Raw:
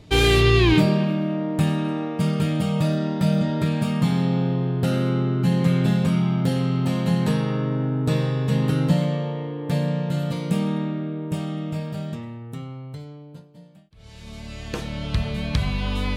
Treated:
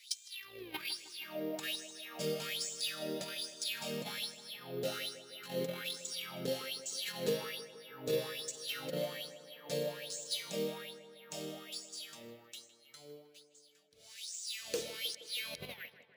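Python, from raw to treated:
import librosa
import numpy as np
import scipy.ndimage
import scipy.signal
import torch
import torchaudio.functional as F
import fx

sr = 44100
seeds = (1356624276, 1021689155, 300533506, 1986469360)

p1 = fx.tape_stop_end(x, sr, length_s=0.48)
p2 = fx.tone_stack(p1, sr, knobs='10-0-1')
p3 = fx.env_lowpass_down(p2, sr, base_hz=2400.0, full_db=-27.0)
p4 = fx.over_compress(p3, sr, threshold_db=-34.0, ratio=-0.5)
p5 = fx.filter_lfo_highpass(p4, sr, shape='sine', hz=1.2, low_hz=460.0, high_hz=7200.0, q=5.7)
p6 = np.repeat(p5[::3], 3)[:len(p5)]
p7 = fx.peak_eq(p6, sr, hz=6400.0, db=14.5, octaves=1.8)
p8 = p7 + fx.echo_tape(p7, sr, ms=157, feedback_pct=73, wet_db=-13.0, lp_hz=2800.0, drive_db=30.0, wow_cents=6, dry=0)
y = p8 * 10.0 ** (8.5 / 20.0)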